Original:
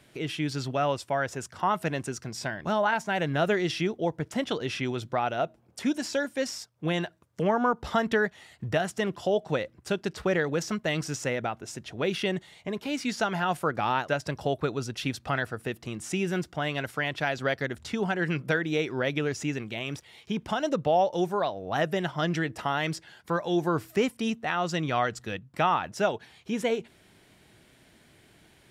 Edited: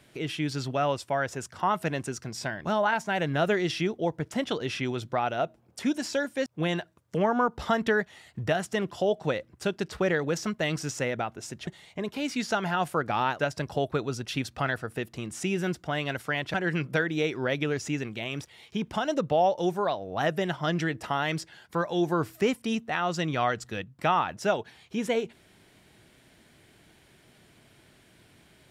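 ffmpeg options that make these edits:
ffmpeg -i in.wav -filter_complex "[0:a]asplit=4[link_01][link_02][link_03][link_04];[link_01]atrim=end=6.462[link_05];[link_02]atrim=start=6.708:end=11.922[link_06];[link_03]atrim=start=12.358:end=17.232[link_07];[link_04]atrim=start=18.088[link_08];[link_05][link_06]acrossfade=duration=0.004:curve1=hsin:curve2=hsin[link_09];[link_09][link_07]acrossfade=duration=0.004:curve1=hsin:curve2=hsin[link_10];[link_10][link_08]acrossfade=duration=0.004:curve1=hsin:curve2=hsin" out.wav

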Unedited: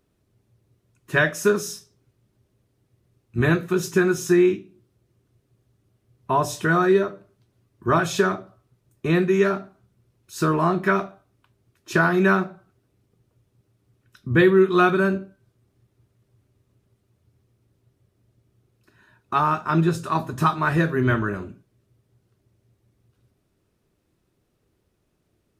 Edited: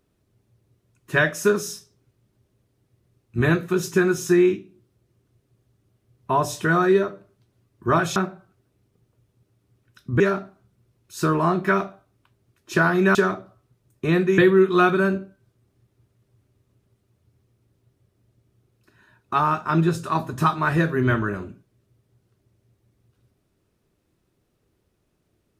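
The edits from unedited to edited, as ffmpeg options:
ffmpeg -i in.wav -filter_complex "[0:a]asplit=5[link_01][link_02][link_03][link_04][link_05];[link_01]atrim=end=8.162[link_06];[link_02]atrim=start=12.338:end=14.382[link_07];[link_03]atrim=start=9.388:end=12.342[link_08];[link_04]atrim=start=8.158:end=9.392[link_09];[link_05]atrim=start=14.378[link_10];[link_06][link_07]acrossfade=duration=0.004:curve1=hsin:curve2=hsin[link_11];[link_11][link_08]acrossfade=duration=0.004:curve1=hsin:curve2=hsin[link_12];[link_12][link_09]acrossfade=duration=0.004:curve1=hsin:curve2=hsin[link_13];[link_13][link_10]acrossfade=duration=0.004:curve1=hsin:curve2=hsin" out.wav

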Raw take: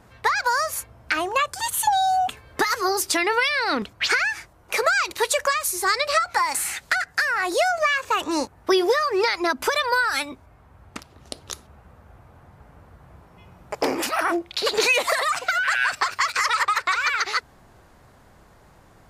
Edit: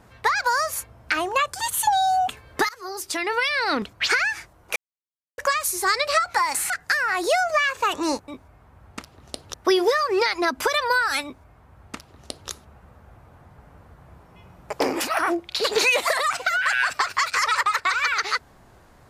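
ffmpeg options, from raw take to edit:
ffmpeg -i in.wav -filter_complex "[0:a]asplit=7[link_01][link_02][link_03][link_04][link_05][link_06][link_07];[link_01]atrim=end=2.69,asetpts=PTS-STARTPTS,afade=type=out:start_time=2.686:duration=0.004:curve=hsin:silence=0.0794328[link_08];[link_02]atrim=start=2.69:end=4.76,asetpts=PTS-STARTPTS,afade=type=in:duration=0.93:silence=0.0794328,afade=type=out:start_time=2.066:duration=0.004:curve=hsin[link_09];[link_03]atrim=start=4.76:end=5.38,asetpts=PTS-STARTPTS,volume=0[link_10];[link_04]atrim=start=5.38:end=6.702,asetpts=PTS-STARTPTS,afade=type=in:duration=0.004:curve=hsin[link_11];[link_05]atrim=start=6.978:end=8.562[link_12];[link_06]atrim=start=10.258:end=11.522[link_13];[link_07]atrim=start=8.558[link_14];[link_08][link_09][link_10][link_11]concat=n=4:v=0:a=1[link_15];[link_15][link_12]acrossfade=duration=0.004:curve1=hsin:curve2=hsin[link_16];[link_16][link_13]acrossfade=duration=0.004:curve1=hsin:curve2=hsin[link_17];[link_17][link_14]acrossfade=duration=0.004:curve1=hsin:curve2=hsin" out.wav

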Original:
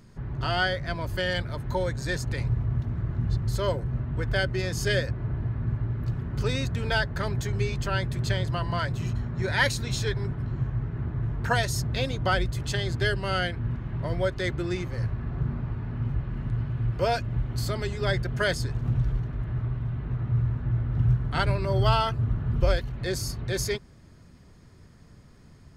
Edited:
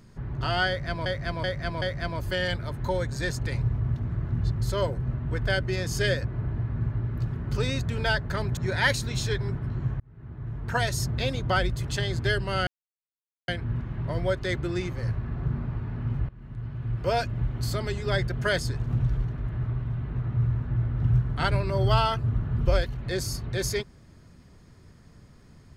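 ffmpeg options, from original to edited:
ffmpeg -i in.wav -filter_complex "[0:a]asplit=8[link_01][link_02][link_03][link_04][link_05][link_06][link_07][link_08];[link_01]atrim=end=1.062[link_09];[link_02]atrim=start=0.678:end=1.062[link_10];[link_03]atrim=start=0.678:end=1.062[link_11];[link_04]atrim=start=0.678:end=7.432[link_12];[link_05]atrim=start=9.328:end=10.76,asetpts=PTS-STARTPTS,afade=type=out:start_time=1.428:duration=0.004:curve=hsin[link_13];[link_06]atrim=start=10.76:end=13.43,asetpts=PTS-STARTPTS,afade=type=in:duration=0.96,afade=type=out:start_time=2.666:duration=0.004:curve=hsin,apad=pad_dur=0.81[link_14];[link_07]atrim=start=13.43:end=16.24,asetpts=PTS-STARTPTS,afade=type=in:duration=0.004:curve=hsin,afade=type=out:start_time=2.806:duration=0.004:curve=hsin:silence=0.11885[link_15];[link_08]atrim=start=16.24,asetpts=PTS-STARTPTS,afade=type=in:duration=0.89:silence=0.11885[link_16];[link_09][link_10]acrossfade=duration=0.004:curve1=hsin:curve2=hsin[link_17];[link_17][link_11]acrossfade=duration=0.004:curve1=hsin:curve2=hsin[link_18];[link_18][link_12]acrossfade=duration=0.004:curve1=hsin:curve2=hsin[link_19];[link_13][link_14][link_15][link_16]concat=n=4:v=0:a=1[link_20];[link_19][link_20]acrossfade=duration=0.004:curve1=hsin:curve2=hsin" out.wav

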